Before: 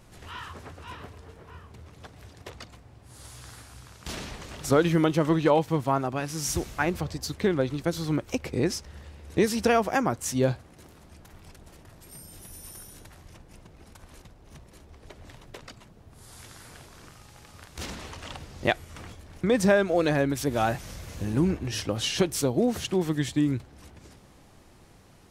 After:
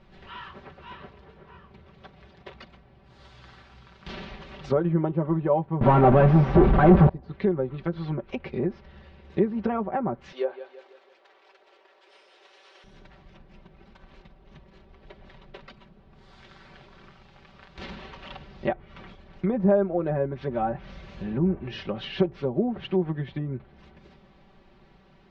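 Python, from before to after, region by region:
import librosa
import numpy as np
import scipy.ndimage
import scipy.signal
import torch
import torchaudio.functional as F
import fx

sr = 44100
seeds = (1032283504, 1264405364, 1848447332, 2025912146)

y = fx.chain(x, sr, fx.zero_step(step_db=-30.5),
    fx.leveller(passes=5), at=(5.81, 7.09))
y = fx.chain(y, sr, fx.cvsd(bps=64000),
    fx.ellip_bandpass(low_hz=420.0, high_hz=8700.0, order=3, stop_db=40),
    fx.echo_feedback(ms=166, feedback_pct=45, wet_db=-14.0), at=(10.32, 12.84))
y = fx.env_lowpass_down(y, sr, base_hz=920.0, full_db=-21.0)
y = scipy.signal.sosfilt(scipy.signal.butter(4, 3900.0, 'lowpass', fs=sr, output='sos'), y)
y = y + 0.76 * np.pad(y, (int(5.2 * sr / 1000.0), 0))[:len(y)]
y = y * librosa.db_to_amplitude(-3.0)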